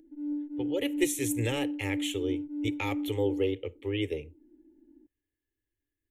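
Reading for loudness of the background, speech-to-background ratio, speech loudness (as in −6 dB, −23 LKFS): −35.0 LKFS, 2.5 dB, −32.5 LKFS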